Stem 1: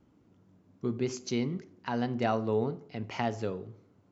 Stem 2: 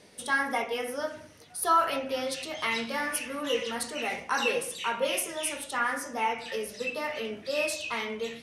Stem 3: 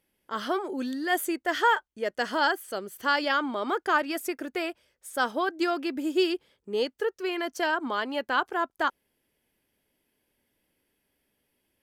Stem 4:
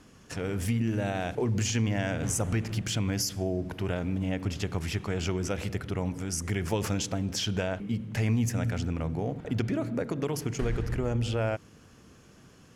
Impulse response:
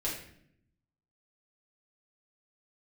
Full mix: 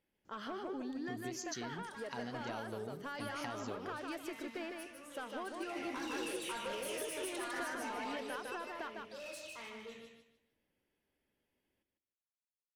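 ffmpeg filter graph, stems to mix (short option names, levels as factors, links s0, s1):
-filter_complex "[0:a]equalizer=f=6300:t=o:w=1.7:g=12.5,adelay=250,volume=0.447[s0];[1:a]asoftclip=type=tanh:threshold=0.0316,adelay=1650,volume=0.531,afade=t=in:st=5.49:d=0.42:silence=0.223872,afade=t=out:st=7.9:d=0.67:silence=0.375837,asplit=2[s1][s2];[s2]volume=0.531[s3];[2:a]acompressor=threshold=0.0501:ratio=6,asoftclip=type=tanh:threshold=0.0531,lowpass=f=3100:p=1,volume=0.447,asplit=2[s4][s5];[s5]volume=0.422[s6];[s0][s1][s4]amix=inputs=3:normalize=0,acompressor=threshold=0.01:ratio=6,volume=1[s7];[s3][s6]amix=inputs=2:normalize=0,aecho=0:1:152|304|456|608:1|0.28|0.0784|0.022[s8];[s7][s8]amix=inputs=2:normalize=0"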